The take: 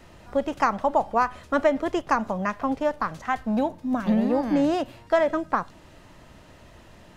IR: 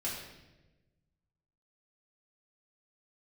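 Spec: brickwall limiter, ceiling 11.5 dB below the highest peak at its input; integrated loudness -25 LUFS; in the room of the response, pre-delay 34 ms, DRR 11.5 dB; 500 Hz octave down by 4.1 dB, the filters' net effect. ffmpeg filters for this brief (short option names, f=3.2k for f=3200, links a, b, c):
-filter_complex "[0:a]equalizer=f=500:t=o:g=-5.5,alimiter=limit=-19.5dB:level=0:latency=1,asplit=2[a][b];[1:a]atrim=start_sample=2205,adelay=34[c];[b][c]afir=irnorm=-1:irlink=0,volume=-14.5dB[d];[a][d]amix=inputs=2:normalize=0,volume=5dB"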